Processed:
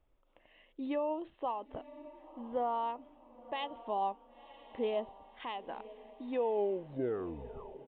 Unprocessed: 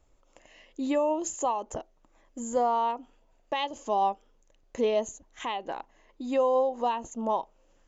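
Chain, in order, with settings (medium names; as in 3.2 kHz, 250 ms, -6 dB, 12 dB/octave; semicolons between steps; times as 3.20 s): tape stop on the ending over 1.59 s; resampled via 8 kHz; echo that smears into a reverb 1015 ms, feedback 41%, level -16 dB; trim -8 dB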